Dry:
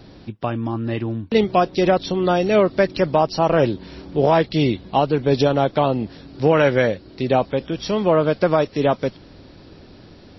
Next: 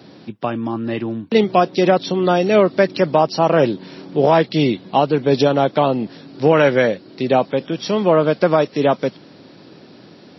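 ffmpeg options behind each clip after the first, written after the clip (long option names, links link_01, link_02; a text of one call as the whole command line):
ffmpeg -i in.wav -af "highpass=frequency=140:width=0.5412,highpass=frequency=140:width=1.3066,volume=2.5dB" out.wav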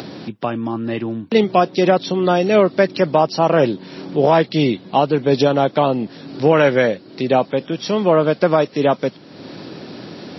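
ffmpeg -i in.wav -af "acompressor=mode=upward:threshold=-23dB:ratio=2.5" out.wav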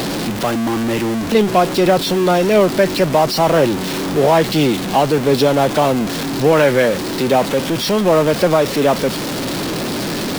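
ffmpeg -i in.wav -af "aeval=exprs='val(0)+0.5*0.158*sgn(val(0))':channel_layout=same,volume=-1dB" out.wav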